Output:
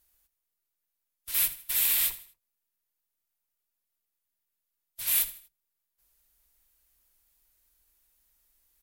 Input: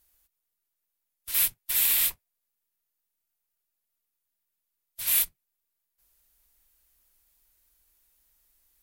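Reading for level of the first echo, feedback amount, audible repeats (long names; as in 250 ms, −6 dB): −15.5 dB, 37%, 3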